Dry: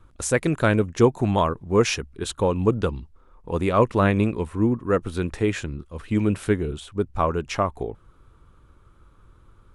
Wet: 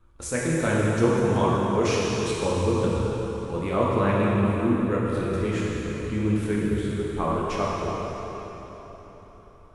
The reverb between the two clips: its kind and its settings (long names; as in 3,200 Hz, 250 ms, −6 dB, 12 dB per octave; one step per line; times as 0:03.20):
dense smooth reverb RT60 4.1 s, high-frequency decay 0.85×, DRR −6 dB
level −8.5 dB